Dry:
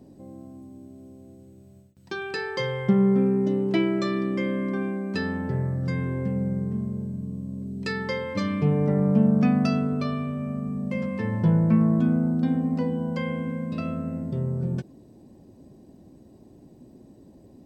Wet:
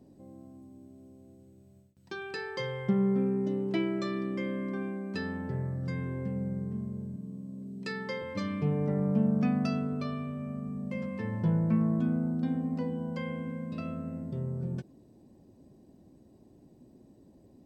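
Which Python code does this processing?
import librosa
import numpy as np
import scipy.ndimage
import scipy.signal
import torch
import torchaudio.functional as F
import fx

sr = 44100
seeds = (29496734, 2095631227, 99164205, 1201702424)

y = fx.highpass(x, sr, hz=140.0, slope=24, at=(7.16, 8.22))
y = y * 10.0 ** (-7.0 / 20.0)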